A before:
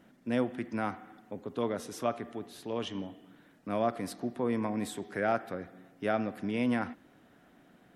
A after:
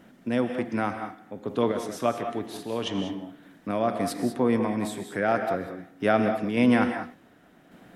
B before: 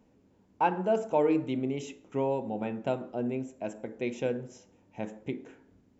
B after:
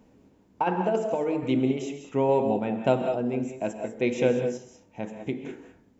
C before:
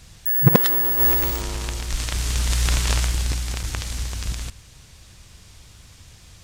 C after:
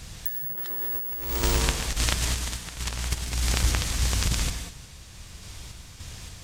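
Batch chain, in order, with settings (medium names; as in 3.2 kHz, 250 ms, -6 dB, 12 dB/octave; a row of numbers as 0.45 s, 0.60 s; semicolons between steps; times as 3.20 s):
compressor with a negative ratio -25 dBFS, ratio -0.5; random-step tremolo; gated-style reverb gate 220 ms rising, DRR 6.5 dB; normalise loudness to -27 LUFS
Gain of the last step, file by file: +9.0 dB, +7.0 dB, +2.5 dB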